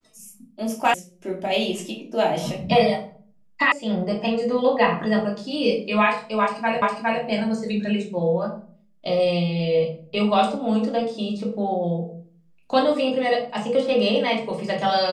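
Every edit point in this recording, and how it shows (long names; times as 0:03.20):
0:00.94: cut off before it has died away
0:03.72: cut off before it has died away
0:06.82: the same again, the last 0.41 s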